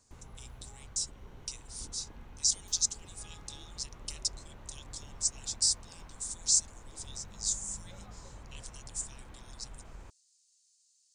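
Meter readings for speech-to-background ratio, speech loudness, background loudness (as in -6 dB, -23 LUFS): 19.0 dB, -33.0 LUFS, -52.0 LUFS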